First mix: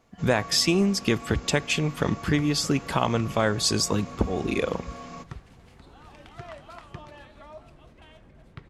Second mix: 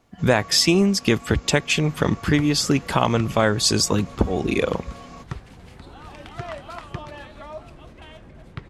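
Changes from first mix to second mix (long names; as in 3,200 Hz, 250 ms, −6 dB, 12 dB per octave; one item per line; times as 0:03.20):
speech +5.0 dB
second sound +9.0 dB
reverb: off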